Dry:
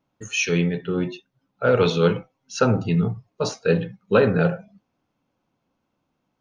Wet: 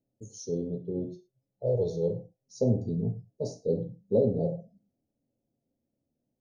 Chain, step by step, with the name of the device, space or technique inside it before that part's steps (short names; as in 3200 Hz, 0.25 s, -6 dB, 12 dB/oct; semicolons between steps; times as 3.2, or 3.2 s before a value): inverse Chebyshev band-stop 1300–2600 Hz, stop band 60 dB; 1.04–2.56 bell 250 Hz -15 dB 0.43 oct; behind a face mask (high shelf 2200 Hz -8 dB); non-linear reverb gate 0.13 s falling, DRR 7.5 dB; gain -7 dB